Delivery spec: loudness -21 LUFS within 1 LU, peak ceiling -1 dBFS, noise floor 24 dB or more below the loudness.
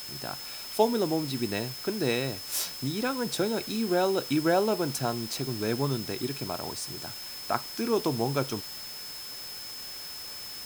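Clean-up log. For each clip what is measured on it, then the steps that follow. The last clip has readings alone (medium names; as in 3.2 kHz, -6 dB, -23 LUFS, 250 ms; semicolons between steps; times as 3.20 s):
steady tone 5.2 kHz; tone level -40 dBFS; noise floor -40 dBFS; noise floor target -54 dBFS; loudness -30.0 LUFS; peak level -9.0 dBFS; loudness target -21.0 LUFS
-> band-stop 5.2 kHz, Q 30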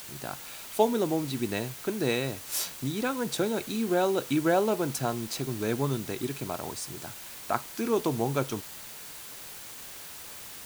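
steady tone not found; noise floor -44 dBFS; noise floor target -55 dBFS
-> noise reduction 11 dB, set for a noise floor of -44 dBFS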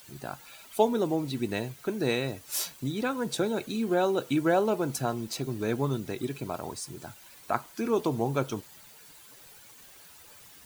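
noise floor -52 dBFS; noise floor target -54 dBFS
-> noise reduction 6 dB, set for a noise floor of -52 dBFS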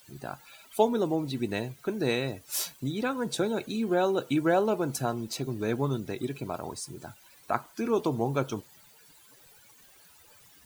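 noise floor -57 dBFS; loudness -30.0 LUFS; peak level -9.0 dBFS; loudness target -21.0 LUFS
-> trim +9 dB; peak limiter -1 dBFS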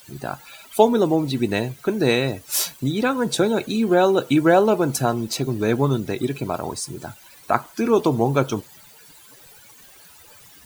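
loudness -21.0 LUFS; peak level -1.0 dBFS; noise floor -48 dBFS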